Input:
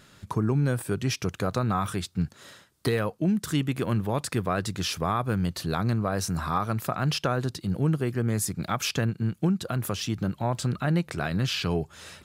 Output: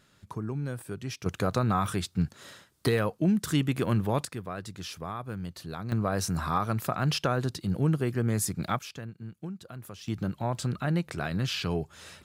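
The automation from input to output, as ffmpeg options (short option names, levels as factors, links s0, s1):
-af "asetnsamples=n=441:p=0,asendcmd='1.26 volume volume 0dB;4.25 volume volume -10dB;5.92 volume volume -1dB;8.79 volume volume -14dB;10.08 volume volume -3dB',volume=0.355"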